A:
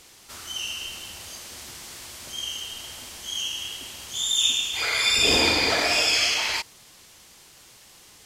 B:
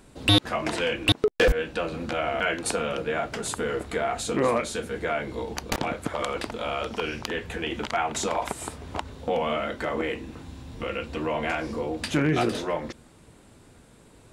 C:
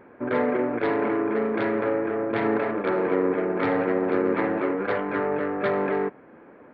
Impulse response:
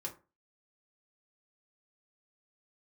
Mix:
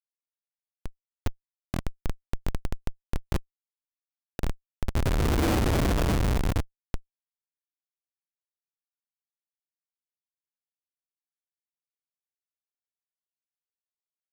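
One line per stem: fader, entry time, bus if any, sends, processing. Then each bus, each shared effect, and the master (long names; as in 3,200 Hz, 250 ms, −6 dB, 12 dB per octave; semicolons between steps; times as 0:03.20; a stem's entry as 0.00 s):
+2.5 dB, 0.00 s, send −4.5 dB, spectral envelope flattened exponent 0.6
−13.0 dB, 0.65 s, send −5.5 dB, Butterworth high-pass 450 Hz 48 dB per octave; high-shelf EQ 3,600 Hz +12 dB
−2.0 dB, 1.05 s, muted 0:03.38–0:05.22, no send, bass and treble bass +7 dB, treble −3 dB; compressor whose output falls as the input rises −29 dBFS, ratio −1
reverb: on, RT60 0.30 s, pre-delay 3 ms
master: spectral tilt −4.5 dB per octave; comparator with hysteresis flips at −13.5 dBFS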